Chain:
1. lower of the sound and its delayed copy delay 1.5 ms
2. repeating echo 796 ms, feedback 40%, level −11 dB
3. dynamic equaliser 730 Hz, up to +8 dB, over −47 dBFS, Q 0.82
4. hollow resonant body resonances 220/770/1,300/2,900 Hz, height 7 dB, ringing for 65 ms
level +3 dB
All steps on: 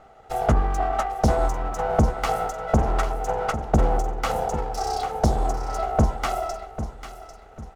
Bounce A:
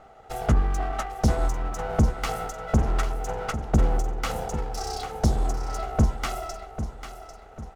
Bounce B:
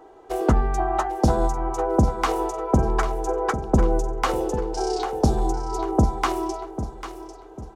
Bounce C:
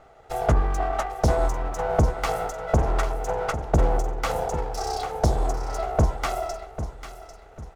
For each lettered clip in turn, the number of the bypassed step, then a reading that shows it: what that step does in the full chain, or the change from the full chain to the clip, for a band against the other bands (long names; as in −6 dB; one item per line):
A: 3, 1 kHz band −6.0 dB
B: 1, 250 Hz band +3.5 dB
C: 4, 250 Hz band −3.5 dB